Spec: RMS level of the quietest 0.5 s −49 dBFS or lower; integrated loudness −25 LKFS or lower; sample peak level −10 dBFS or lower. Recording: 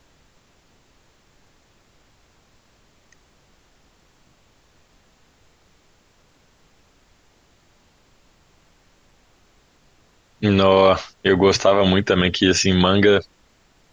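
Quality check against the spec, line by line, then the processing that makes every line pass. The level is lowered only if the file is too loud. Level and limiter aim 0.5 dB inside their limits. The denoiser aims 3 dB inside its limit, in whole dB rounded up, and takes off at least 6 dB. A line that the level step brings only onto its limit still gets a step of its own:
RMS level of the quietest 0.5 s −58 dBFS: in spec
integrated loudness −17.0 LKFS: out of spec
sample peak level −4.5 dBFS: out of spec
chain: level −8.5 dB

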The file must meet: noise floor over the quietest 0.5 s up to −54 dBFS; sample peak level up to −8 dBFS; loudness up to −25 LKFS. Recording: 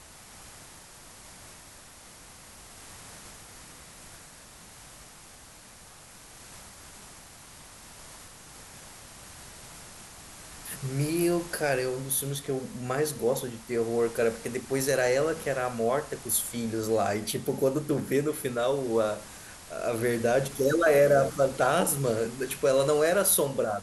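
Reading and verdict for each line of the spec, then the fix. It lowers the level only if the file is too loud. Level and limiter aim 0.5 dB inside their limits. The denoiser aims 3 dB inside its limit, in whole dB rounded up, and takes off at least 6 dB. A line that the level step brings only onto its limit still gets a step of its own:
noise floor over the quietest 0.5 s −50 dBFS: out of spec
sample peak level −11.0 dBFS: in spec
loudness −27.0 LKFS: in spec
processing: broadband denoise 7 dB, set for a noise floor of −50 dBFS

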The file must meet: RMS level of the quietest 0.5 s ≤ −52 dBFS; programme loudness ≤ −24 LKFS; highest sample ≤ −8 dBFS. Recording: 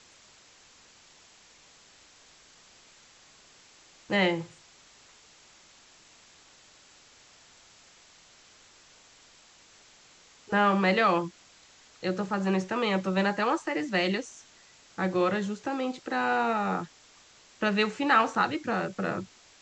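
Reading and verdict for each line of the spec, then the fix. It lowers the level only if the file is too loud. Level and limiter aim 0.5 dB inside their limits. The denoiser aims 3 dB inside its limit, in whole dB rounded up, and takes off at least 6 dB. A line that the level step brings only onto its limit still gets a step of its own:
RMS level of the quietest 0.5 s −57 dBFS: in spec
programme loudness −27.5 LKFS: in spec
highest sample −10.0 dBFS: in spec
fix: no processing needed

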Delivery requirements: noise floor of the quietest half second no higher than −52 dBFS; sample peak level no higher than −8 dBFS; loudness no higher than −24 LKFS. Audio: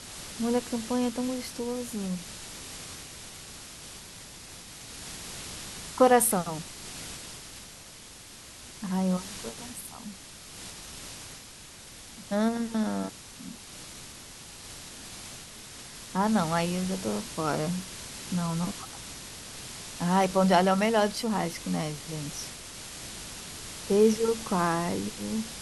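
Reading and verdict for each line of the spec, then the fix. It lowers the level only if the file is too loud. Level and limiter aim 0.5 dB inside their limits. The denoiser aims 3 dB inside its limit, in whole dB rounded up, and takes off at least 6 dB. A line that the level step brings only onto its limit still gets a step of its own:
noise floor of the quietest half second −47 dBFS: out of spec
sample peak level −9.5 dBFS: in spec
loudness −29.5 LKFS: in spec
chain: broadband denoise 8 dB, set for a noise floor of −47 dBFS

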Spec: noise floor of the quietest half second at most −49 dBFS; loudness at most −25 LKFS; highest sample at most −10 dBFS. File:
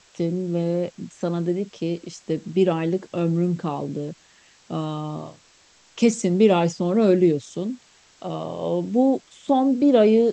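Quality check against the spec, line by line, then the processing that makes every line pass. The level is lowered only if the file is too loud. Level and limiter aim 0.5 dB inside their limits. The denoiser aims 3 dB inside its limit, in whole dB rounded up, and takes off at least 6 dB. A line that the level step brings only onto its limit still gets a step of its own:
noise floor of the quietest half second −56 dBFS: in spec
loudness −22.5 LKFS: out of spec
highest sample −6.0 dBFS: out of spec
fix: level −3 dB
brickwall limiter −10.5 dBFS

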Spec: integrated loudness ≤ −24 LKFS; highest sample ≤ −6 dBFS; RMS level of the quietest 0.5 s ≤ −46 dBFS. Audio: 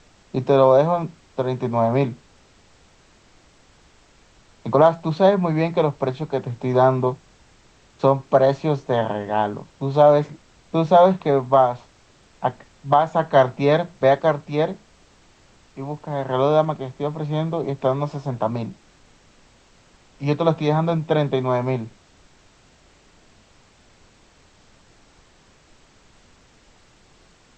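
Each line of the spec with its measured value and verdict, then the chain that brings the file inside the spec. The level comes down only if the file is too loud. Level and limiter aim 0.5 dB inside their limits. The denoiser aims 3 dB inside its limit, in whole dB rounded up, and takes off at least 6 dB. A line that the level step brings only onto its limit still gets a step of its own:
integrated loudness −20.5 LKFS: out of spec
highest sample −3.0 dBFS: out of spec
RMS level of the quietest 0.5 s −54 dBFS: in spec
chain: level −4 dB

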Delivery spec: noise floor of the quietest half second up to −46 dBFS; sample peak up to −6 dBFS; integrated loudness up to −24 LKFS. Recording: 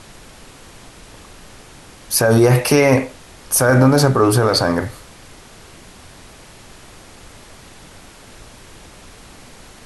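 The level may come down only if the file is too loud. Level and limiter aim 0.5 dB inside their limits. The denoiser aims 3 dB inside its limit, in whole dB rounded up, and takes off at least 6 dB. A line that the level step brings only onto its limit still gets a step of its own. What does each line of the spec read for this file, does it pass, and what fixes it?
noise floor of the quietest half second −42 dBFS: out of spec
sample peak −3.5 dBFS: out of spec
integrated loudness −14.5 LKFS: out of spec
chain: level −10 dB

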